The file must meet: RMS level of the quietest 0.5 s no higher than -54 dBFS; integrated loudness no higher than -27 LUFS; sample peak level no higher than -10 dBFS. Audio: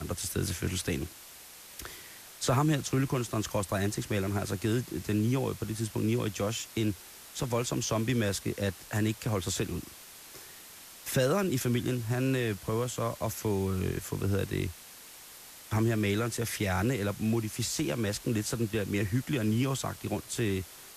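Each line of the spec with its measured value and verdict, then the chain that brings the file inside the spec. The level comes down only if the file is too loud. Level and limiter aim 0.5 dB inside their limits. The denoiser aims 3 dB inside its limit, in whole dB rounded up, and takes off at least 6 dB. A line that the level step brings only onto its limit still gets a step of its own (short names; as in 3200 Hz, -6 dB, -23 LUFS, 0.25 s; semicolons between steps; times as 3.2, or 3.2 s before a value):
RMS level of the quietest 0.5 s -50 dBFS: fail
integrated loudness -31.0 LUFS: OK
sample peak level -14.5 dBFS: OK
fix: denoiser 7 dB, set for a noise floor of -50 dBFS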